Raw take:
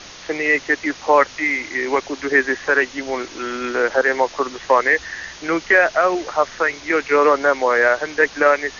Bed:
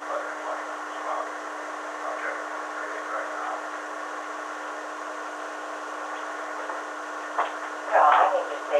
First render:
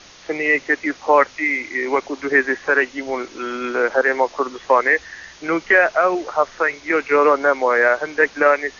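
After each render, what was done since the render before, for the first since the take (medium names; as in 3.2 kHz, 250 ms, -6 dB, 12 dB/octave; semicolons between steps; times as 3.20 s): noise print and reduce 6 dB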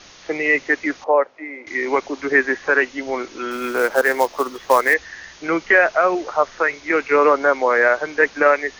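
1.04–1.67 s: band-pass filter 580 Hz, Q 1.5; 3.51–4.94 s: short-mantissa float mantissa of 2-bit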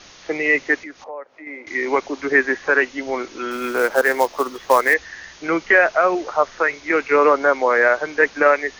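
0.79–1.47 s: compression 2.5:1, threshold -38 dBFS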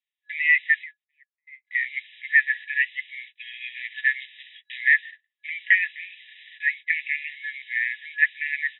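gate -31 dBFS, range -44 dB; FFT band-pass 1.7–3.9 kHz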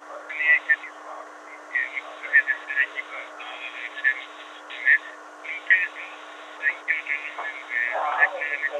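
add bed -8.5 dB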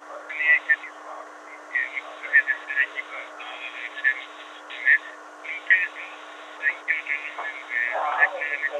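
no audible change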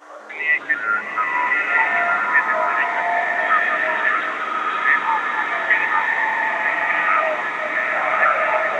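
ever faster or slower copies 188 ms, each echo -6 st, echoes 3; swelling reverb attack 1340 ms, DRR -2.5 dB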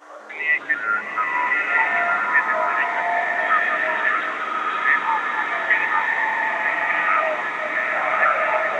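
trim -1.5 dB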